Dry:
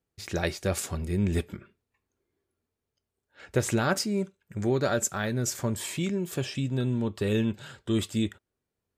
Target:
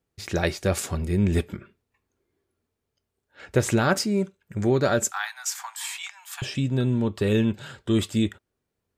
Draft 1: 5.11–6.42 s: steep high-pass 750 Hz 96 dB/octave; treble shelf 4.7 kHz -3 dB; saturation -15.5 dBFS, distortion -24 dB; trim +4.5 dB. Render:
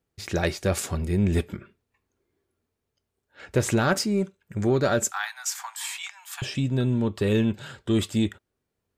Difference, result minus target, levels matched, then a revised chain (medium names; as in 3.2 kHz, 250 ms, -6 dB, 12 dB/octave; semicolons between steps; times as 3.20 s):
saturation: distortion +20 dB
5.11–6.42 s: steep high-pass 750 Hz 96 dB/octave; treble shelf 4.7 kHz -3 dB; saturation -4.5 dBFS, distortion -44 dB; trim +4.5 dB